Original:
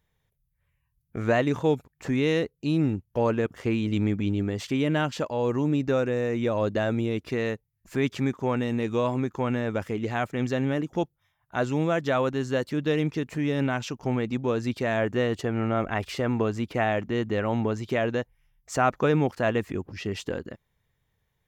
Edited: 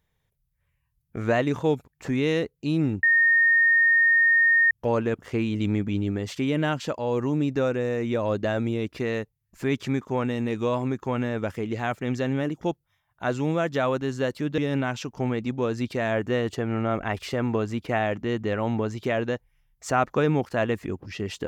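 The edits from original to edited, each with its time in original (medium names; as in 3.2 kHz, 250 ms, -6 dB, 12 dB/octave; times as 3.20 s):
3.03 s: add tone 1.84 kHz -15.5 dBFS 1.68 s
12.90–13.44 s: delete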